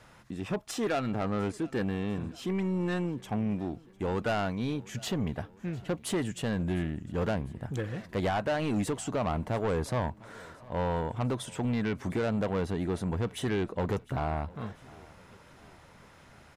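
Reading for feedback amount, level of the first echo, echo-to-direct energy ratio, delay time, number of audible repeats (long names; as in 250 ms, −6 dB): 55%, −23.0 dB, −21.5 dB, 703 ms, 3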